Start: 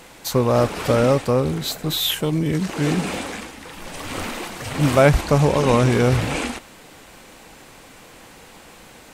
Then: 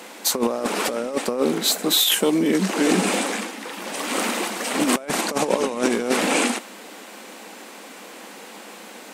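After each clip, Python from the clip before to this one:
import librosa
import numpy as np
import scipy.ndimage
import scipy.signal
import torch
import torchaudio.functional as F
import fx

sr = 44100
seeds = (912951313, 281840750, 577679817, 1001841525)

y = scipy.signal.sosfilt(scipy.signal.ellip(4, 1.0, 40, 200.0, 'highpass', fs=sr, output='sos'), x)
y = fx.dynamic_eq(y, sr, hz=8800.0, q=1.1, threshold_db=-44.0, ratio=4.0, max_db=6)
y = fx.over_compress(y, sr, threshold_db=-22.0, ratio=-0.5)
y = y * 10.0 ** (2.5 / 20.0)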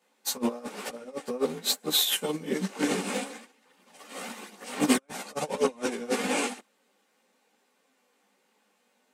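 y = fx.notch_comb(x, sr, f0_hz=330.0)
y = fx.chorus_voices(y, sr, voices=2, hz=0.53, base_ms=16, depth_ms=4.5, mix_pct=55)
y = fx.upward_expand(y, sr, threshold_db=-38.0, expansion=2.5)
y = y * 10.0 ** (2.5 / 20.0)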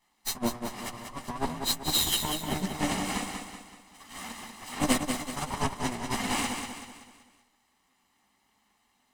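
y = fx.lower_of_two(x, sr, delay_ms=0.99)
y = fx.echo_feedback(y, sr, ms=190, feedback_pct=45, wet_db=-6.5)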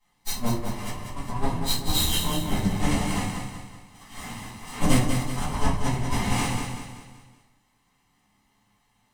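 y = fx.octave_divider(x, sr, octaves=1, level_db=-1.0)
y = fx.room_shoebox(y, sr, seeds[0], volume_m3=30.0, walls='mixed', distance_m=1.2)
y = y * 10.0 ** (-5.5 / 20.0)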